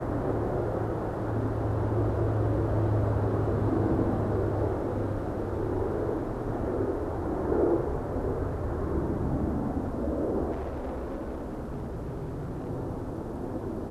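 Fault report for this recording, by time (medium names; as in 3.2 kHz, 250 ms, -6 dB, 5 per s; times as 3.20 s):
10.51–12.70 s: clipped -30 dBFS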